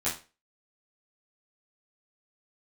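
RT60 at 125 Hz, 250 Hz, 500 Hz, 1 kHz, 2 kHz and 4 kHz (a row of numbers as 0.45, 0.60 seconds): 0.30, 0.30, 0.35, 0.30, 0.30, 0.30 seconds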